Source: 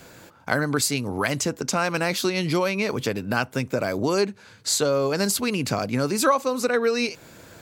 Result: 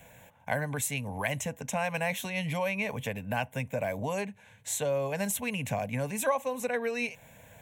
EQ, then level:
phaser with its sweep stopped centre 1,300 Hz, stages 6
−3.5 dB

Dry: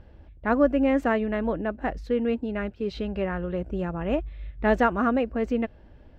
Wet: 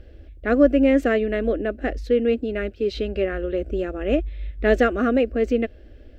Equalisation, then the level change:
phaser with its sweep stopped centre 390 Hz, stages 4
+7.5 dB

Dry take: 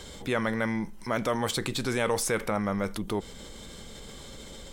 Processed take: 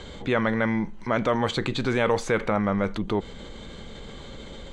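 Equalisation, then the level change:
high-frequency loss of the air 130 metres
parametric band 9,000 Hz −5 dB 0.23 octaves
notch filter 5,300 Hz, Q 6.1
+5.0 dB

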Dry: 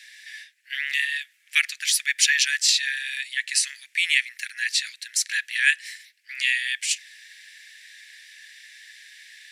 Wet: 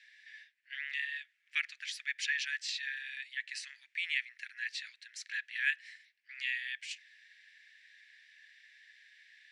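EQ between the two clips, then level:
head-to-tape spacing loss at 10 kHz 25 dB
−7.0 dB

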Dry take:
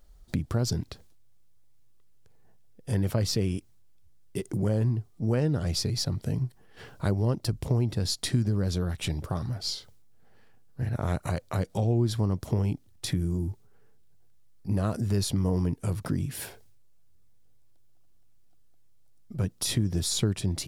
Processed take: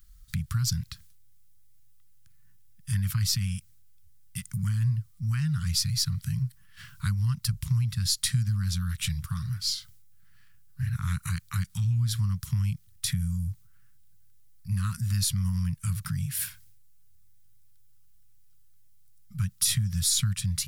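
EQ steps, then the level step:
inverse Chebyshev band-stop filter 300–700 Hz, stop band 50 dB
high-shelf EQ 8,800 Hz +11 dB
+1.0 dB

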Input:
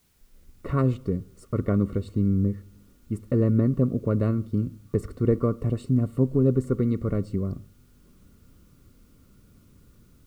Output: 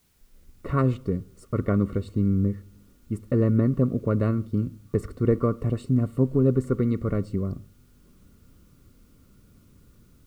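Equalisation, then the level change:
dynamic equaliser 1,600 Hz, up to +4 dB, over −40 dBFS, Q 0.71
0.0 dB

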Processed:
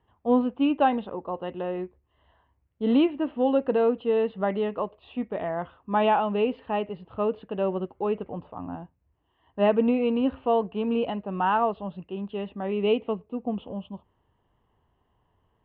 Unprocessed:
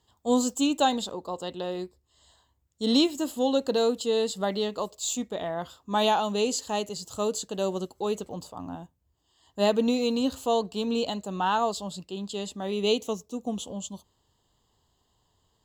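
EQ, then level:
Butterworth low-pass 2,700 Hz 48 dB per octave
+2.0 dB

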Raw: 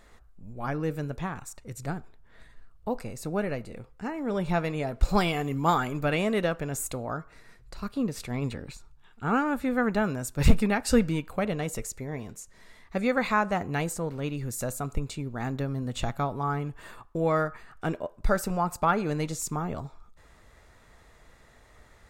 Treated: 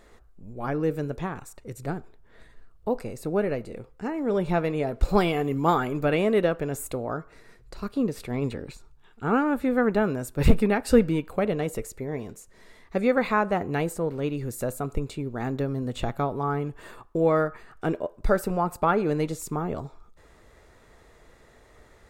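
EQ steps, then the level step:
dynamic equaliser 6,300 Hz, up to −7 dB, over −52 dBFS, Q 1.3
parametric band 400 Hz +7 dB 1.1 octaves
0.0 dB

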